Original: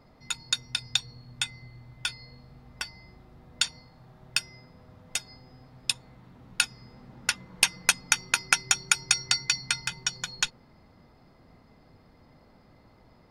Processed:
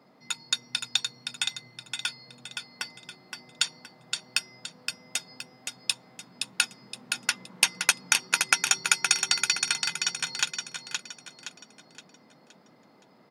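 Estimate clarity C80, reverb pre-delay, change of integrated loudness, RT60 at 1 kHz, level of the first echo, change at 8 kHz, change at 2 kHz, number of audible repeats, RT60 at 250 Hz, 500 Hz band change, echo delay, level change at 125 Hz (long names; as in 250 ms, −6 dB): no reverb audible, no reverb audible, +0.5 dB, no reverb audible, −5.5 dB, +1.5 dB, +1.5 dB, 4, no reverb audible, +1.5 dB, 519 ms, −8.0 dB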